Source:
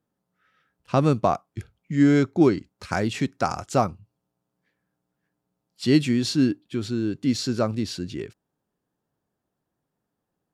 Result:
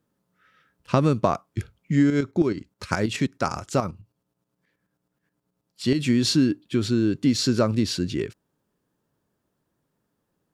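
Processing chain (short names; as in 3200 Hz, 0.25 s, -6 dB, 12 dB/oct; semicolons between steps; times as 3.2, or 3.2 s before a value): bell 750 Hz -7.5 dB 0.22 oct; compressor 6:1, threshold -21 dBFS, peak gain reduction 8.5 dB; 2.1–5.99 tremolo saw up 9.4 Hz, depth 65%; gain +5.5 dB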